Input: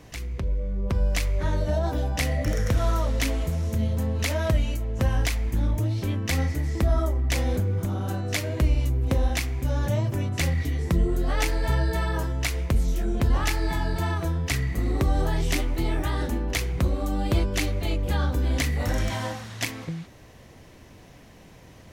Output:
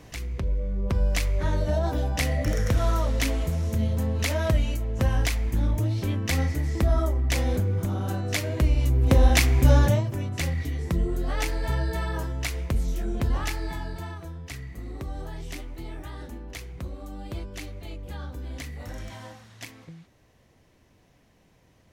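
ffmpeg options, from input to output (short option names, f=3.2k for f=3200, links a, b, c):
-af "volume=9.5dB,afade=t=in:st=8.75:d=0.96:silence=0.334965,afade=t=out:st=9.71:d=0.33:silence=0.237137,afade=t=out:st=13.24:d=0.98:silence=0.354813"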